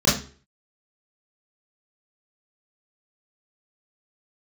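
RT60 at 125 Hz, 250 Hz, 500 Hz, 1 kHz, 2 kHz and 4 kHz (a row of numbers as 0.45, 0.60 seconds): 0.50, 0.40, 0.45, 0.40, 0.40, 0.35 seconds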